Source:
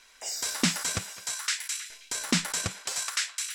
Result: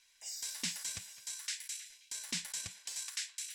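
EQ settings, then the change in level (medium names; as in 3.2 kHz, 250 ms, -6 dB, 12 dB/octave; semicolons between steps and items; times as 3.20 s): amplifier tone stack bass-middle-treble 5-5-5; peaking EQ 1.3 kHz -14 dB 0.21 oct; -3.0 dB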